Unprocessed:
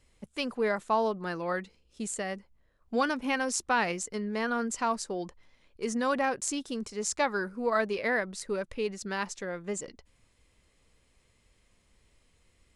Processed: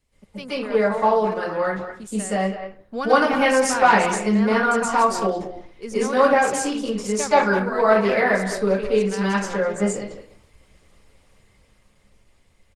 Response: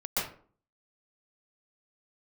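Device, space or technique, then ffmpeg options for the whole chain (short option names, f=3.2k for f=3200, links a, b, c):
speakerphone in a meeting room: -filter_complex "[1:a]atrim=start_sample=2205[a];[0:a][a]afir=irnorm=-1:irlink=0,asplit=2[b][c];[c]adelay=200,highpass=300,lowpass=3.4k,asoftclip=type=hard:threshold=-14dB,volume=-10dB[d];[b][d]amix=inputs=2:normalize=0,dynaudnorm=f=340:g=13:m=11dB,volume=-1dB" -ar 48000 -c:a libopus -b:a 20k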